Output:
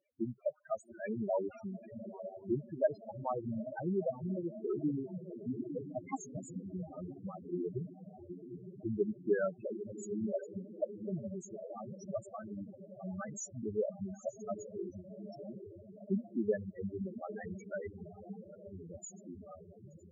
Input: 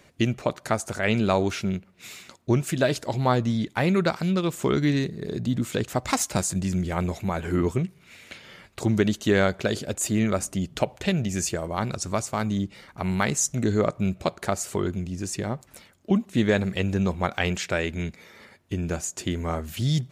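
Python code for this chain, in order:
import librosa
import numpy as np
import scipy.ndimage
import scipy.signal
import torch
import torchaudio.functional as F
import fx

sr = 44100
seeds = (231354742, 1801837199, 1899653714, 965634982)

y = fx.fade_out_tail(x, sr, length_s=0.91)
y = fx.low_shelf(y, sr, hz=260.0, db=-11.0)
y = fx.echo_diffused(y, sr, ms=868, feedback_pct=68, wet_db=-5)
y = fx.spec_topn(y, sr, count=4)
y = fx.upward_expand(y, sr, threshold_db=-49.0, expansion=1.5)
y = y * librosa.db_to_amplitude(-2.5)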